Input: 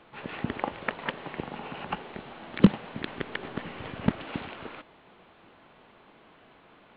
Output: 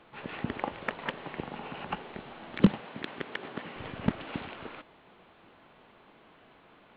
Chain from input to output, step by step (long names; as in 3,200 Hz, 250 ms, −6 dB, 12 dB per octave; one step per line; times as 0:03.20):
0:02.81–0:03.76: high-pass filter 210 Hz 6 dB per octave
in parallel at −10.5 dB: soft clipping −20.5 dBFS, distortion −3 dB
on the sum: level −4 dB